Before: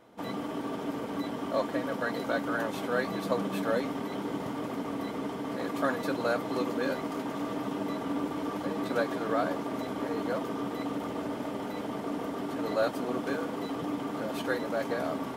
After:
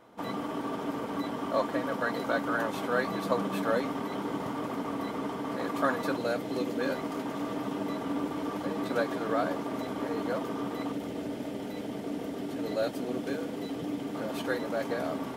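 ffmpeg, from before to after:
ffmpeg -i in.wav -af "asetnsamples=nb_out_samples=441:pad=0,asendcmd='6.18 equalizer g -7.5;6.79 equalizer g -0.5;10.92 equalizer g -10.5;14.15 equalizer g -2.5',equalizer=frequency=1100:width_type=o:width=0.92:gain=3.5" out.wav

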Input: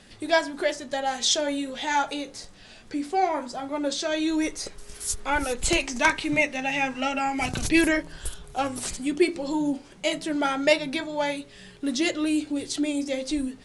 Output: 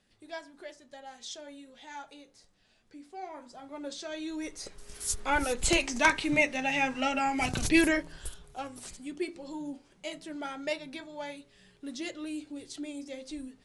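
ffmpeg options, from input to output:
ffmpeg -i in.wav -af "volume=-2.5dB,afade=type=in:start_time=3.14:duration=0.72:silence=0.421697,afade=type=in:start_time=4.41:duration=0.75:silence=0.334965,afade=type=out:start_time=7.73:duration=0.93:silence=0.298538" out.wav

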